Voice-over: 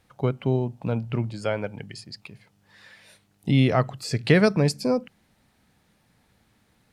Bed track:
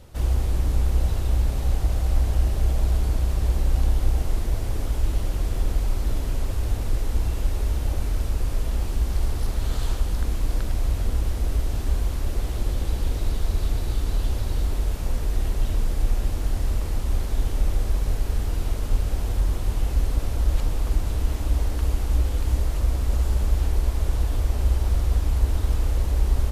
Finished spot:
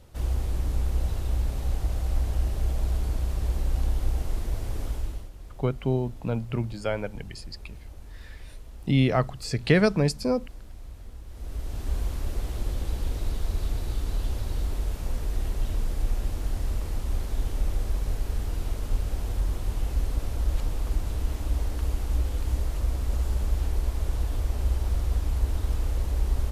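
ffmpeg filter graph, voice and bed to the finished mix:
-filter_complex "[0:a]adelay=5400,volume=0.794[s0];[1:a]volume=2.99,afade=t=out:st=4.88:d=0.42:silence=0.199526,afade=t=in:st=11.27:d=0.73:silence=0.188365[s1];[s0][s1]amix=inputs=2:normalize=0"

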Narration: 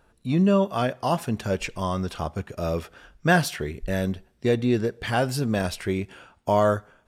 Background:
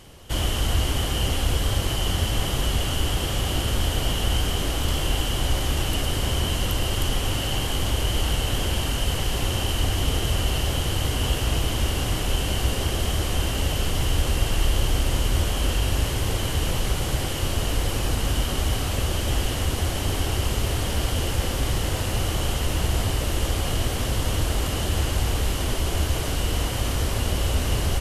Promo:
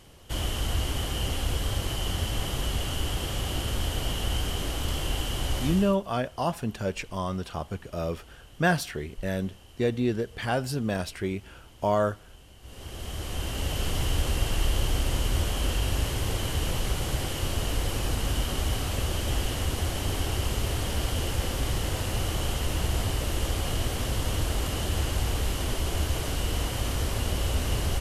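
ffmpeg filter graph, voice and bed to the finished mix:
-filter_complex "[0:a]adelay=5350,volume=0.631[s0];[1:a]volume=7.94,afade=t=out:st=5.64:d=0.34:silence=0.0794328,afade=t=in:st=12.61:d=1.29:silence=0.0668344[s1];[s0][s1]amix=inputs=2:normalize=0"

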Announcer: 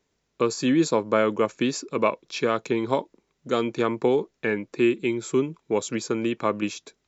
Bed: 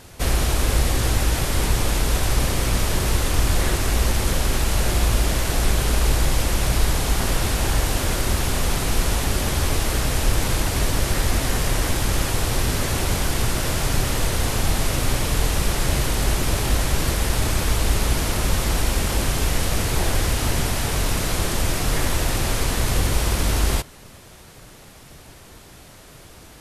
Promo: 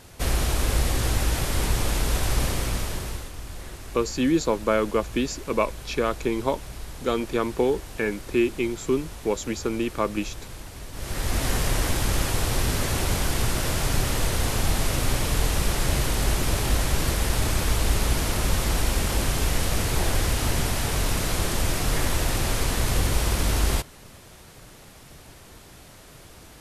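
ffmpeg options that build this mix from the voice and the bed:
-filter_complex "[0:a]adelay=3550,volume=0.891[s0];[1:a]volume=3.98,afade=t=out:st=2.45:d=0.87:silence=0.188365,afade=t=in:st=10.92:d=0.55:silence=0.16788[s1];[s0][s1]amix=inputs=2:normalize=0"

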